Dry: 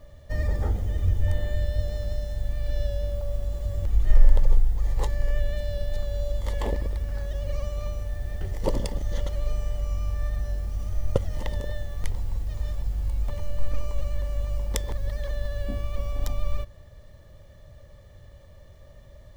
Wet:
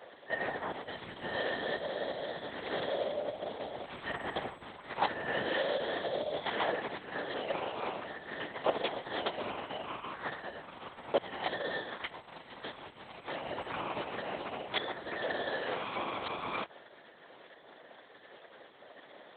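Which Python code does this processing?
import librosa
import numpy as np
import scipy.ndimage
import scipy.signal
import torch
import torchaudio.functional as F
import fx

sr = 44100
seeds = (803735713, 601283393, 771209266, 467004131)

y = fx.lpc_vocoder(x, sr, seeds[0], excitation='whisper', order=8)
y = scipy.signal.sosfilt(scipy.signal.butter(2, 720.0, 'highpass', fs=sr, output='sos'), y)
y = y * 10.0 ** (4.5 / 20.0)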